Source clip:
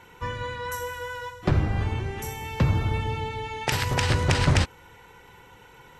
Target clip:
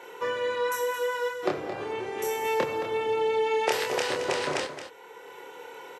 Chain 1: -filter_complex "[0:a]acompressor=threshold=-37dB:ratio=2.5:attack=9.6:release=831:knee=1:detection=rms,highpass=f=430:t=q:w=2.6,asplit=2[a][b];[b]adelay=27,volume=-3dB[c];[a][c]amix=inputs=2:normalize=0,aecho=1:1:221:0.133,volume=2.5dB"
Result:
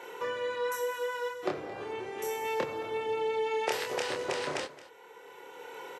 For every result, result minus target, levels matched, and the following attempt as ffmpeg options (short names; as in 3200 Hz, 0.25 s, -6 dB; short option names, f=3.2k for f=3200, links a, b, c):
compressor: peak gain reduction +5 dB; echo-to-direct -7 dB
-filter_complex "[0:a]acompressor=threshold=-29dB:ratio=2.5:attack=9.6:release=831:knee=1:detection=rms,highpass=f=430:t=q:w=2.6,asplit=2[a][b];[b]adelay=27,volume=-3dB[c];[a][c]amix=inputs=2:normalize=0,aecho=1:1:221:0.133,volume=2.5dB"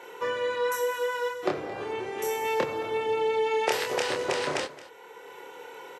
echo-to-direct -7 dB
-filter_complex "[0:a]acompressor=threshold=-29dB:ratio=2.5:attack=9.6:release=831:knee=1:detection=rms,highpass=f=430:t=q:w=2.6,asplit=2[a][b];[b]adelay=27,volume=-3dB[c];[a][c]amix=inputs=2:normalize=0,aecho=1:1:221:0.299,volume=2.5dB"